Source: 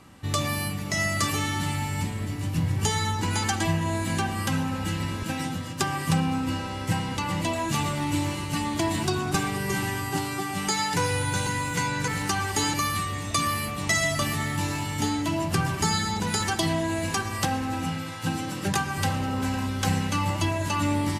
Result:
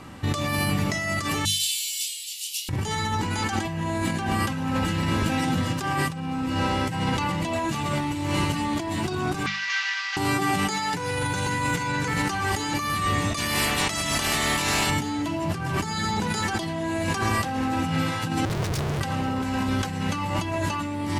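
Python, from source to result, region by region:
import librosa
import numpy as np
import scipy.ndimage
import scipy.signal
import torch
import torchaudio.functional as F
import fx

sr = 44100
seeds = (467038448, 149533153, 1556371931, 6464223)

y = fx.chain(x, sr, fx.steep_highpass(hz=2900.0, slope=48),
    fx.tilt_eq(slope=2.5),
    fx.doubler(ms=26.0, db=-4.0), at=(1.45, 2.69))
y = fx.chain(y, sr, fx.cvsd(bps=32000),
    fx.highpass(hz=1500.0, slope=24), at=(9.46, 10.17))
y = fx.spec_clip(y, sr, under_db=18, at=(13.36, 14.89), fade=0.02)
y = fx.peak_eq(y, sr, hz=450.0, db=-4.5, octaves=1.3, at=(13.36, 14.89), fade=0.02)
y = fx.chain(y, sr, fx.ellip_bandstop(low_hz=140.0, high_hz=4600.0, order=3, stop_db=40),
    fx.schmitt(flips_db=-39.5),
    fx.doppler_dist(depth_ms=0.29), at=(18.45, 19.01))
y = fx.high_shelf(y, sr, hz=5300.0, db=-7.0)
y = fx.hum_notches(y, sr, base_hz=50, count=4)
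y = fx.over_compress(y, sr, threshold_db=-32.0, ratio=-1.0)
y = y * 10.0 ** (6.0 / 20.0)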